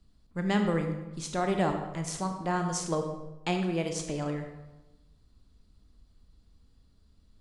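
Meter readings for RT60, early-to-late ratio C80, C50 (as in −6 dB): 1.0 s, 8.0 dB, 6.0 dB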